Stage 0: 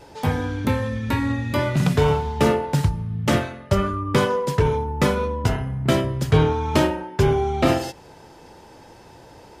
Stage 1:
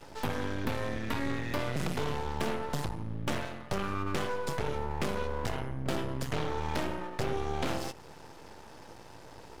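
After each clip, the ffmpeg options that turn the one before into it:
-filter_complex "[0:a]aeval=exprs='0.562*(cos(1*acos(clip(val(0)/0.562,-1,1)))-cos(1*PI/2))+0.2*(cos(5*acos(clip(val(0)/0.562,-1,1)))-cos(5*PI/2))':c=same,acrossover=split=250|2500[s0][s1][s2];[s0]acompressor=threshold=0.0708:ratio=4[s3];[s1]acompressor=threshold=0.1:ratio=4[s4];[s2]acompressor=threshold=0.0316:ratio=4[s5];[s3][s4][s5]amix=inputs=3:normalize=0,aeval=exprs='max(val(0),0)':c=same,volume=0.355"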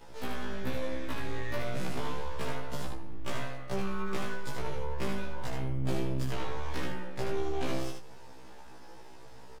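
-af "flanger=delay=4.1:depth=9.7:regen=84:speed=0.32:shape=sinusoidal,aecho=1:1:76:0.562,afftfilt=real='re*1.73*eq(mod(b,3),0)':imag='im*1.73*eq(mod(b,3),0)':win_size=2048:overlap=0.75,volume=1.41"

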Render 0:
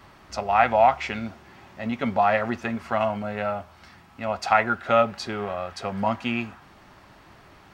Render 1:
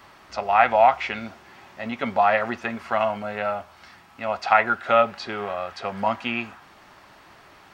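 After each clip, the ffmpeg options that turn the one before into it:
-filter_complex "[0:a]lowshelf=f=290:g=-10.5,acrossover=split=4800[s0][s1];[s1]acompressor=threshold=0.00126:ratio=4:attack=1:release=60[s2];[s0][s2]amix=inputs=2:normalize=0,volume=1.41"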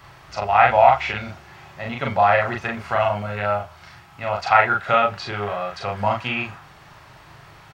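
-filter_complex "[0:a]lowshelf=f=180:t=q:w=3:g=6.5,asplit=2[s0][s1];[s1]adelay=39,volume=0.794[s2];[s0][s2]amix=inputs=2:normalize=0,volume=1.12"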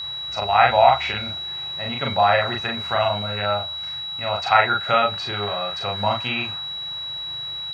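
-af "aeval=exprs='val(0)+0.0447*sin(2*PI*3900*n/s)':c=same,volume=0.891"

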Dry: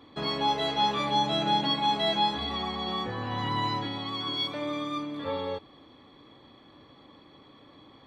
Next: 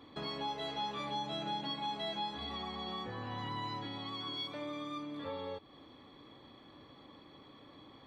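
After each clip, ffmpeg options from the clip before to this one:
-af "acompressor=threshold=0.00891:ratio=2,volume=0.75"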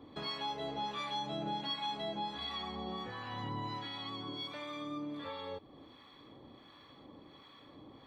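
-filter_complex "[0:a]acrossover=split=870[s0][s1];[s0]aeval=exprs='val(0)*(1-0.7/2+0.7/2*cos(2*PI*1.4*n/s))':c=same[s2];[s1]aeval=exprs='val(0)*(1-0.7/2-0.7/2*cos(2*PI*1.4*n/s))':c=same[s3];[s2][s3]amix=inputs=2:normalize=0,volume=1.5"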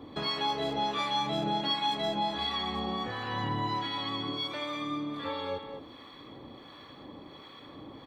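-filter_complex "[0:a]asplit=2[s0][s1];[s1]adelay=210,highpass=300,lowpass=3400,asoftclip=type=hard:threshold=0.0168,volume=0.447[s2];[s0][s2]amix=inputs=2:normalize=0,volume=2.37"

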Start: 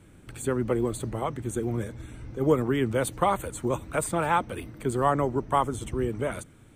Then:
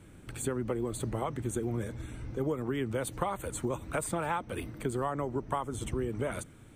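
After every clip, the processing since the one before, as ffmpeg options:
-af "acompressor=threshold=0.0398:ratio=10"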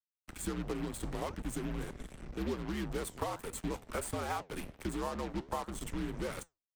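-af "acrusher=bits=5:mix=0:aa=0.5,flanger=delay=5.8:depth=9.5:regen=-80:speed=1.4:shape=sinusoidal,afreqshift=-72"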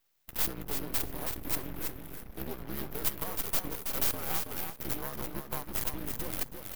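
-filter_complex "[0:a]aexciter=amount=11.4:drive=9:freq=11000,aeval=exprs='max(val(0),0)':c=same,asplit=2[s0][s1];[s1]aecho=0:1:325|650|975:0.531|0.0849|0.0136[s2];[s0][s2]amix=inputs=2:normalize=0"

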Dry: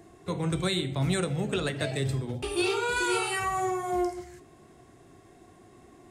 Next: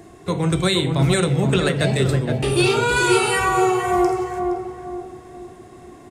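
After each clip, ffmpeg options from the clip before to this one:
-filter_complex "[0:a]asplit=2[s0][s1];[s1]adelay=468,lowpass=f=1300:p=1,volume=0.631,asplit=2[s2][s3];[s3]adelay=468,lowpass=f=1300:p=1,volume=0.43,asplit=2[s4][s5];[s5]adelay=468,lowpass=f=1300:p=1,volume=0.43,asplit=2[s6][s7];[s7]adelay=468,lowpass=f=1300:p=1,volume=0.43,asplit=2[s8][s9];[s9]adelay=468,lowpass=f=1300:p=1,volume=0.43[s10];[s0][s2][s4][s6][s8][s10]amix=inputs=6:normalize=0,volume=2.82"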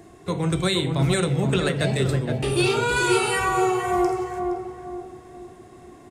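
-af "aeval=exprs='0.531*(cos(1*acos(clip(val(0)/0.531,-1,1)))-cos(1*PI/2))+0.0335*(cos(2*acos(clip(val(0)/0.531,-1,1)))-cos(2*PI/2))+0.0133*(cos(4*acos(clip(val(0)/0.531,-1,1)))-cos(4*PI/2))':c=same,volume=0.668"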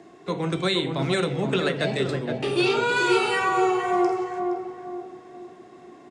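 -filter_complex "[0:a]acrossover=split=160 6700:gain=0.0708 1 0.0794[s0][s1][s2];[s0][s1][s2]amix=inputs=3:normalize=0"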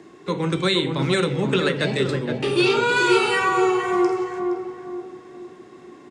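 -af "equalizer=f=690:w=7.7:g=-14,volume=1.5"

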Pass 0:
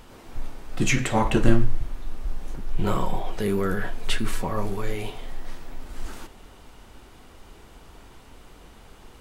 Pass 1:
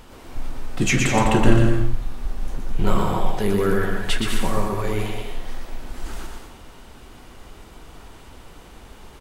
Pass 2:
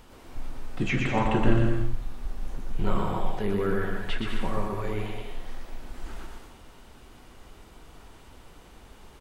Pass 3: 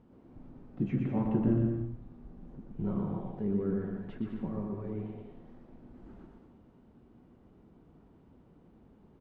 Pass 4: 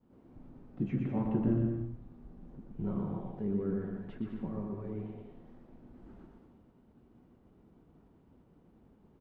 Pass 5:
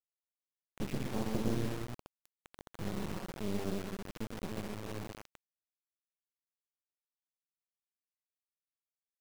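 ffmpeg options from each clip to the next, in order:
-af "aecho=1:1:120|204|262.8|304|332.8:0.631|0.398|0.251|0.158|0.1,volume=1.33"
-filter_complex "[0:a]acrossover=split=3600[s0][s1];[s1]acompressor=threshold=0.00355:ratio=4:attack=1:release=60[s2];[s0][s2]amix=inputs=2:normalize=0,volume=0.473"
-af "bandpass=f=200:t=q:w=1.3:csg=0"
-af "agate=range=0.0224:threshold=0.00141:ratio=3:detection=peak,volume=0.794"
-af "acrusher=bits=4:dc=4:mix=0:aa=0.000001"

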